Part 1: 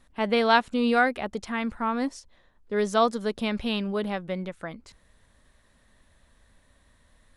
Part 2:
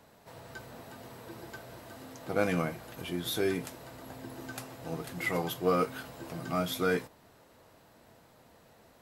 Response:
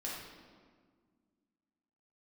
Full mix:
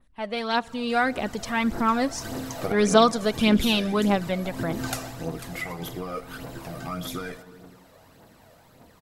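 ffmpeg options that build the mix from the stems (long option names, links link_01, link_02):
-filter_complex "[0:a]volume=-7.5dB,asplit=3[link_01][link_02][link_03];[link_02]volume=-21.5dB[link_04];[1:a]acompressor=threshold=-35dB:ratio=6,adelay=350,volume=-3dB,afade=type=out:start_time=4.88:duration=0.31:silence=0.446684,asplit=2[link_05][link_06];[link_06]volume=-9.5dB[link_07];[link_03]apad=whole_len=412821[link_08];[link_05][link_08]sidechaincompress=threshold=-49dB:ratio=8:attack=16:release=122[link_09];[2:a]atrim=start_sample=2205[link_10];[link_04][link_07]amix=inputs=2:normalize=0[link_11];[link_11][link_10]afir=irnorm=-1:irlink=0[link_12];[link_01][link_09][link_12]amix=inputs=3:normalize=0,adynamicequalizer=threshold=0.00158:dfrequency=6400:dqfactor=1.3:tfrequency=6400:tqfactor=1.3:attack=5:release=100:ratio=0.375:range=3.5:mode=boostabove:tftype=bell,dynaudnorm=framelen=690:gausssize=3:maxgain=12.5dB,aphaser=in_gain=1:out_gain=1:delay=1.8:decay=0.48:speed=1.7:type=triangular"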